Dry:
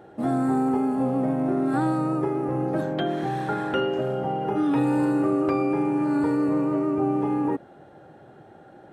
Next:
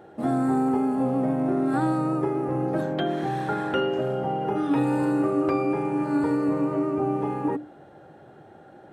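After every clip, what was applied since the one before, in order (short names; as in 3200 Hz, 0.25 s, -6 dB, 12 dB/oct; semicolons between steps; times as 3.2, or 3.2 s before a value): notches 60/120/180/240/300 Hz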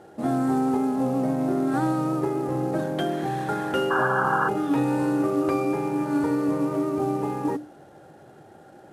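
CVSD 64 kbps; painted sound noise, 3.9–4.49, 740–1700 Hz -24 dBFS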